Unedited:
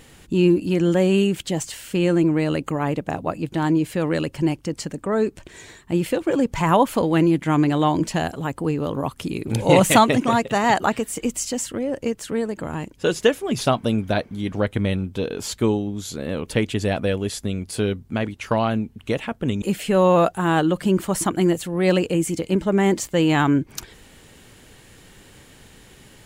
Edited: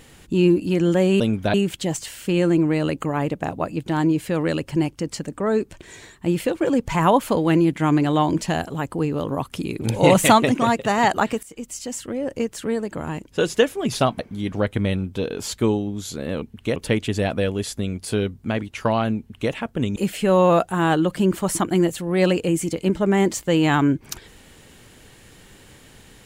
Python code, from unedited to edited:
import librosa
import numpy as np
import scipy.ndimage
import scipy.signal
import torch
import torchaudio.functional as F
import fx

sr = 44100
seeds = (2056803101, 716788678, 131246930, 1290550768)

y = fx.edit(x, sr, fx.fade_in_from(start_s=11.09, length_s=0.91, floor_db=-16.0),
    fx.move(start_s=13.85, length_s=0.34, to_s=1.2),
    fx.duplicate(start_s=18.84, length_s=0.34, to_s=16.42), tone=tone)